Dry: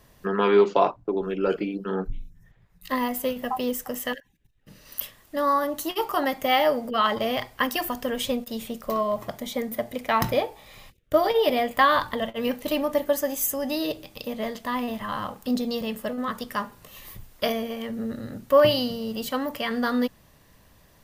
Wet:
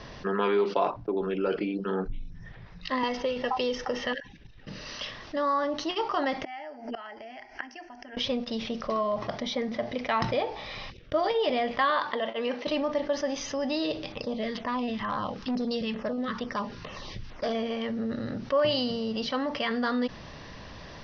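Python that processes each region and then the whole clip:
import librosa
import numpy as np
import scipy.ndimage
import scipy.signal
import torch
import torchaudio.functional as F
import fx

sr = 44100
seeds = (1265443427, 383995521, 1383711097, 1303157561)

y = fx.chain(x, sr, fx.comb(ms=2.2, depth=0.43),
    fx.band_squash(depth_pct=100), at=(3.03, 4.07))
y = fx.chain(y, sr, fx.bass_treble(bass_db=-9, treble_db=4),
    fx.gate_flip(shuts_db=-19.0, range_db=-27),
    fx.fixed_phaser(hz=760.0, stages=8), at=(6.44, 8.17))
y = fx.chain(y, sr, fx.highpass(hz=310.0, slope=12),
    fx.high_shelf(hz=4500.0, db=-5.5), at=(11.9, 12.67))
y = fx.chain(y, sr, fx.filter_lfo_notch(shape='saw_down', hz=2.2, low_hz=500.0, high_hz=6100.0, q=0.84),
    fx.clip_hard(threshold_db=-22.5), at=(14.12, 17.55))
y = scipy.signal.sosfilt(scipy.signal.butter(16, 5800.0, 'lowpass', fs=sr, output='sos'), y)
y = fx.low_shelf(y, sr, hz=150.0, db=-4.5)
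y = fx.env_flatten(y, sr, amount_pct=50)
y = F.gain(torch.from_numpy(y), -8.0).numpy()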